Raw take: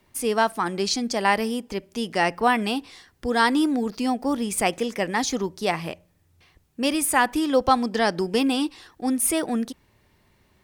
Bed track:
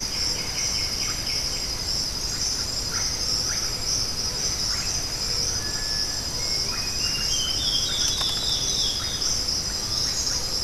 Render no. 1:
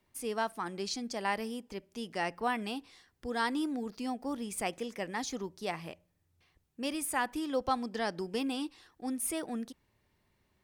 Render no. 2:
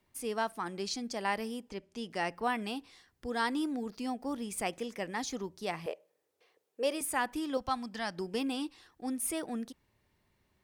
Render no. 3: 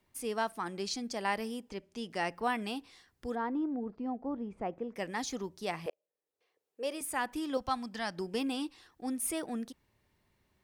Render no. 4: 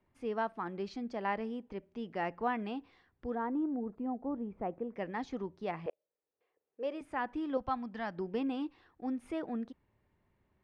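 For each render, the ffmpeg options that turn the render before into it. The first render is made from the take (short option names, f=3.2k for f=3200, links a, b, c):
-af "volume=-12dB"
-filter_complex "[0:a]asettb=1/sr,asplit=3[a][b][c];[a]atrim=end=1.694[d];[b]atrim=start=1.69:end=2.1,asetpts=PTS-STARTPTS,afade=t=in:d=0.004:c=qsin,afade=t=out:st=0.406:d=0.004:c=qsin,lowpass=8.5k[e];[c]atrim=start=2.096[f];[d][e]acrossfade=d=0.004:c1=hsin:c2=qsin[g];[g][f]acrossfade=d=0.004:c1=qsin:c2=hsin,asettb=1/sr,asplit=3[h][i][j];[h]atrim=end=5.864[k];[i]atrim=start=5.86:end=7.01,asetpts=PTS-STARTPTS,afade=t=in:d=0.004:c=qsin,afade=t=out:st=1.146:d=0.004:c=qsin,highpass=f=470:t=q:w=5.7[l];[j]atrim=start=7.006[m];[k][l]acrossfade=d=0.004:c1=hsin:c2=qsin[n];[n][m]acrossfade=d=0.004:c1=qsin:c2=hsin,asettb=1/sr,asplit=3[o][p][q];[o]atrim=end=7.574[r];[p]atrim=start=7.57:end=8.18,asetpts=PTS-STARTPTS,afade=t=in:d=0.004:c=qsin,afade=t=out:st=0.606:d=0.004:c=qsin,equalizer=f=420:w=1.5:g=-12[s];[q]atrim=start=8.176[t];[r][s]acrossfade=d=0.004:c1=hsin:c2=qsin[u];[u][t]acrossfade=d=0.004:c1=qsin:c2=hsin"
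-filter_complex "[0:a]asplit=3[a][b][c];[a]afade=t=out:st=3.34:d=0.02[d];[b]lowpass=1k,afade=t=in:st=3.34:d=0.02,afade=t=out:st=4.95:d=0.02[e];[c]afade=t=in:st=4.95:d=0.02[f];[d][e][f]amix=inputs=3:normalize=0,asplit=2[g][h];[g]atrim=end=5.9,asetpts=PTS-STARTPTS,afade=t=out:st=5.896:d=0.004:c=hsin[i];[h]atrim=start=5.9,asetpts=PTS-STARTPTS,afade=t=in:d=1.63[j];[i][j]concat=n=2:v=0:a=1"
-af "lowpass=2.8k,highshelf=f=2.2k:g=-8.5"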